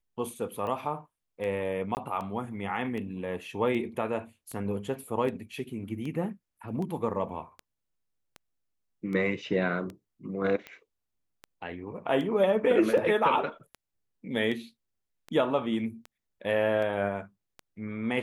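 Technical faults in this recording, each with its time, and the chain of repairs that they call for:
tick 78 rpm -26 dBFS
1.95–1.97 gap 19 ms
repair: de-click; interpolate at 1.95, 19 ms

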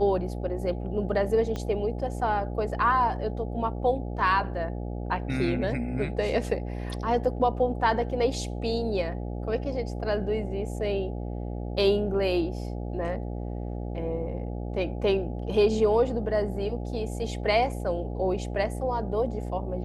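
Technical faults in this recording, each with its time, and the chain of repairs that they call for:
buzz 60 Hz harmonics 14 -33 dBFS
1.56 pop -20 dBFS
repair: de-click; de-hum 60 Hz, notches 14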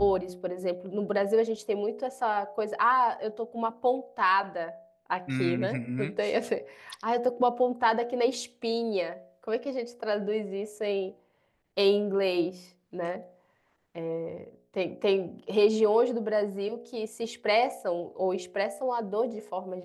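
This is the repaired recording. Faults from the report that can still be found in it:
1.56 pop

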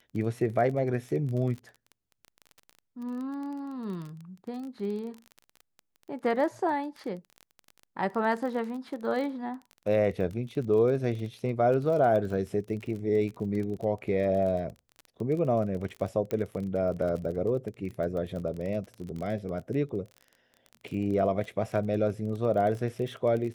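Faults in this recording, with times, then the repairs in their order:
crackle 24/s -35 dBFS
16.31 pop -19 dBFS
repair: de-click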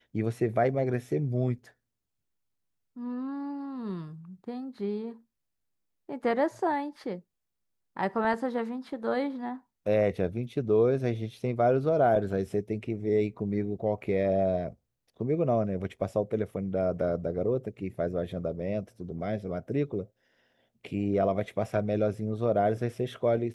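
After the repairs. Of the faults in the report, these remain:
none

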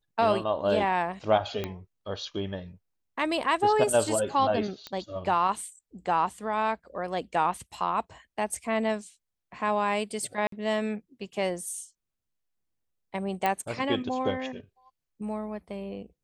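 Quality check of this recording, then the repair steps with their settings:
1.64 pop -17 dBFS
4.87 pop -21 dBFS
10.47–10.52 gap 53 ms
13.46 pop -13 dBFS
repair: de-click; interpolate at 10.47, 53 ms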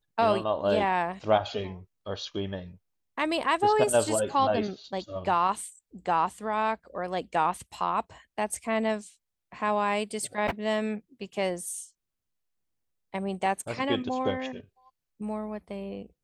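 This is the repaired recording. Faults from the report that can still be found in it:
1.64 pop

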